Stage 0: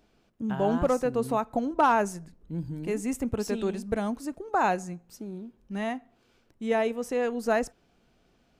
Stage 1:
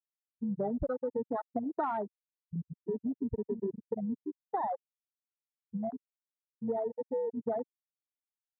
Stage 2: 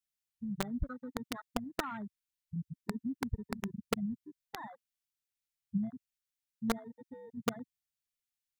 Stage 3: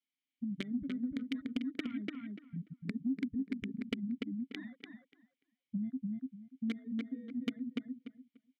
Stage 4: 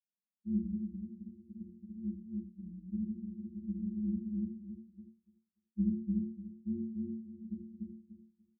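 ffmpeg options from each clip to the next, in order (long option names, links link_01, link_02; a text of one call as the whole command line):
ffmpeg -i in.wav -af "afftfilt=real='re*gte(hypot(re,im),0.251)':imag='im*gte(hypot(re,im),0.251)':win_size=1024:overlap=0.75,afwtdn=0.0282,acompressor=threshold=-30dB:ratio=6" out.wav
ffmpeg -i in.wav -filter_complex "[0:a]equalizer=frequency=810:width=1.3:gain=-11,acrossover=split=220|960[link_01][link_02][link_03];[link_01]aphaser=in_gain=1:out_gain=1:delay=4.4:decay=0.41:speed=0.52:type=triangular[link_04];[link_02]acrusher=bits=4:mix=0:aa=0.000001[link_05];[link_04][link_05][link_03]amix=inputs=3:normalize=0,volume=4.5dB" out.wav
ffmpeg -i in.wav -filter_complex "[0:a]asplit=3[link_01][link_02][link_03];[link_01]bandpass=frequency=270:width_type=q:width=8,volume=0dB[link_04];[link_02]bandpass=frequency=2290:width_type=q:width=8,volume=-6dB[link_05];[link_03]bandpass=frequency=3010:width_type=q:width=8,volume=-9dB[link_06];[link_04][link_05][link_06]amix=inputs=3:normalize=0,asplit=2[link_07][link_08];[link_08]adelay=292,lowpass=frequency=3400:poles=1,volume=-4dB,asplit=2[link_09][link_10];[link_10]adelay=292,lowpass=frequency=3400:poles=1,volume=0.17,asplit=2[link_11][link_12];[link_12]adelay=292,lowpass=frequency=3400:poles=1,volume=0.17[link_13];[link_09][link_11][link_13]amix=inputs=3:normalize=0[link_14];[link_07][link_14]amix=inputs=2:normalize=0,acompressor=threshold=-50dB:ratio=2.5,volume=14.5dB" out.wav
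ffmpeg -i in.wav -af "asuperpass=centerf=200:order=20:qfactor=4.5,tremolo=f=130:d=0.333,aecho=1:1:57|74:0.631|0.631,volume=7dB" out.wav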